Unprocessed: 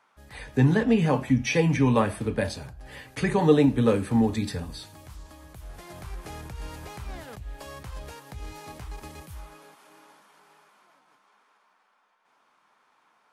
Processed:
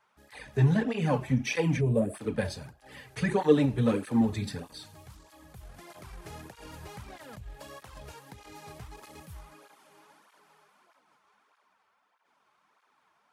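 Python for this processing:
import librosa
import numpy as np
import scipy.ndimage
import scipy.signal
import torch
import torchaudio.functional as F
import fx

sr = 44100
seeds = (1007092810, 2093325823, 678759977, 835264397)

y = np.where(x < 0.0, 10.0 ** (-3.0 / 20.0) * x, x)
y = fx.spec_box(y, sr, start_s=1.8, length_s=0.34, low_hz=740.0, high_hz=6700.0, gain_db=-18)
y = fx.flanger_cancel(y, sr, hz=1.6, depth_ms=4.3)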